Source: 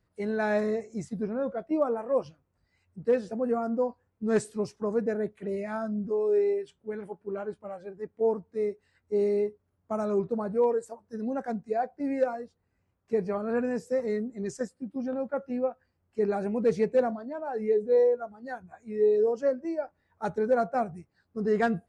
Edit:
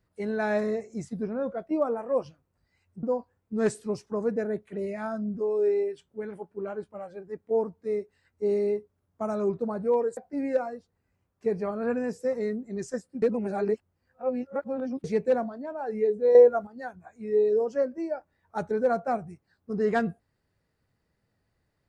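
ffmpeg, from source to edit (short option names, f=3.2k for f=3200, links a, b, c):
-filter_complex "[0:a]asplit=7[a][b][c][d][e][f][g];[a]atrim=end=3.032[h];[b]atrim=start=3.728:end=10.872[i];[c]atrim=start=11.838:end=14.892[j];[d]atrim=start=14.888:end=16.712,asetpts=PTS-STARTPTS,areverse[k];[e]atrim=start=16.708:end=18.022[l];[f]atrim=start=18.018:end=18.342,asetpts=PTS-STARTPTS,volume=9dB[m];[g]atrim=start=18.338[n];[h][i]acrossfade=d=0.004:c1=hsin:c2=hsin[o];[o][j]acrossfade=d=0.004:c1=hsin:c2=hsin[p];[p][k]acrossfade=d=0.004:c1=hsin:c2=hsin[q];[q][l]acrossfade=d=0.004:c1=hsin:c2=hsin[r];[r][m]acrossfade=d=0.004:c1=hsin:c2=hsin[s];[s][n]acrossfade=d=0.004:c1=hsin:c2=hsin"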